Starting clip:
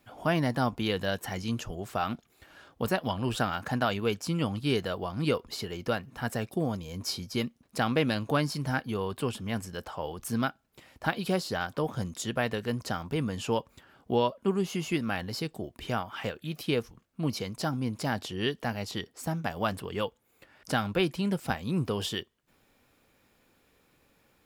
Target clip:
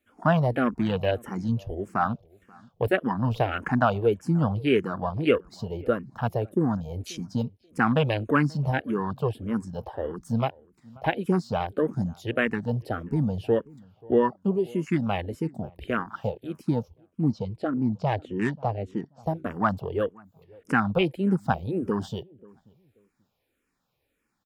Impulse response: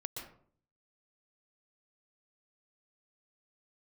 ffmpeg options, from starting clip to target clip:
-filter_complex "[0:a]afwtdn=0.0178,asettb=1/sr,asplit=3[a][b][c];[a]atrim=end=17.324[d];[b]atrim=start=17.32:end=19.26,asetpts=PTS-STARTPTS,afade=t=in:d=0.004:c=qsin,afade=t=out:st=1.936:d=0.004:c=qsin,adynamicsmooth=sensitivity=7:basefreq=4.6k[e];[c]atrim=start=19.256[f];[d][e]acrossfade=d=0.004:c1=hsin:c2=qsin[g];[g][f]acrossfade=d=0.004:c1=qsin:c2=hsin,asplit=2[h][i];[i]adelay=534,lowpass=f=1.1k:p=1,volume=-24dB,asplit=2[j][k];[k]adelay=534,lowpass=f=1.1k:p=1,volume=0.24[l];[j][l]amix=inputs=2:normalize=0[m];[h][m]amix=inputs=2:normalize=0,asplit=2[n][o];[o]afreqshift=-1.7[p];[n][p]amix=inputs=2:normalize=1,volume=8dB"

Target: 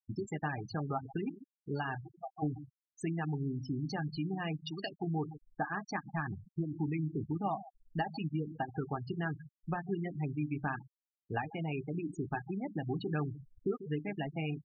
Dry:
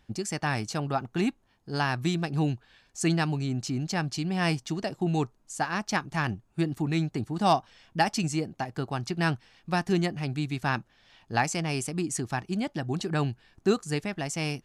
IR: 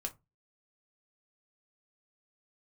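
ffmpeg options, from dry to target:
-filter_complex "[0:a]asplit=3[a][b][c];[a]afade=t=out:st=2:d=0.02[d];[b]asplit=3[e][f][g];[e]bandpass=f=730:t=q:w=8,volume=0dB[h];[f]bandpass=f=1.09k:t=q:w=8,volume=-6dB[i];[g]bandpass=f=2.44k:t=q:w=8,volume=-9dB[j];[h][i][j]amix=inputs=3:normalize=0,afade=t=in:st=2:d=0.02,afade=t=out:st=2.42:d=0.02[k];[c]afade=t=in:st=2.42:d=0.02[l];[d][k][l]amix=inputs=3:normalize=0,asettb=1/sr,asplit=3[m][n][o];[m]atrim=end=4.564[p];[n]atrim=start=4.56:end=5.04,asetpts=PTS-STARTPTS,afade=t=in:d=0.004:c=qsin,afade=t=out:st=0.476:d=0.004:c=qsin,tiltshelf=f=1.2k:g=-8.5[q];[o]atrim=start=5.036[r];[p][q]acrossfade=d=0.004:c1=hsin:c2=qsin[s];[s][r]acrossfade=d=0.004:c1=qsin:c2=hsin,acompressor=threshold=-33dB:ratio=6,asplit=2[t][u];[u]adelay=144,lowpass=f=3.2k:p=1,volume=-14dB,asplit=2[v][w];[w]adelay=144,lowpass=f=3.2k:p=1,volume=0.23,asplit=2[x][y];[y]adelay=144,lowpass=f=3.2k:p=1,volume=0.23[z];[t][v][x][z]amix=inputs=4:normalize=0,asplit=2[aa][ab];[1:a]atrim=start_sample=2205,lowpass=3.5k,highshelf=f=2.6k:g=6.5[ac];[ab][ac]afir=irnorm=-1:irlink=0,volume=3.5dB[ad];[aa][ad]amix=inputs=2:normalize=0,afftfilt=real='re*gte(hypot(re,im),0.0562)':imag='im*gte(hypot(re,im),0.0562)':win_size=1024:overlap=0.75,volume=-6.5dB"

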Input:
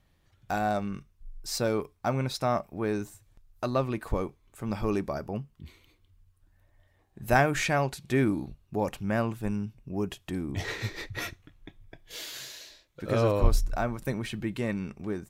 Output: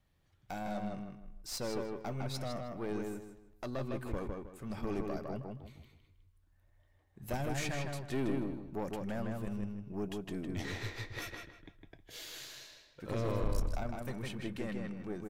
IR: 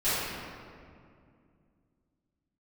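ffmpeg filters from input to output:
-filter_complex "[0:a]acrossover=split=490|3000[a][b][c];[b]acompressor=threshold=-33dB:ratio=6[d];[a][d][c]amix=inputs=3:normalize=0,aeval=exprs='(tanh(17.8*val(0)+0.6)-tanh(0.6))/17.8':c=same,asplit=2[e][f];[f]adelay=157,lowpass=f=3.7k:p=1,volume=-3dB,asplit=2[g][h];[h]adelay=157,lowpass=f=3.7k:p=1,volume=0.31,asplit=2[i][j];[j]adelay=157,lowpass=f=3.7k:p=1,volume=0.31,asplit=2[k][l];[l]adelay=157,lowpass=f=3.7k:p=1,volume=0.31[m];[e][g][i][k][m]amix=inputs=5:normalize=0,volume=-4.5dB"

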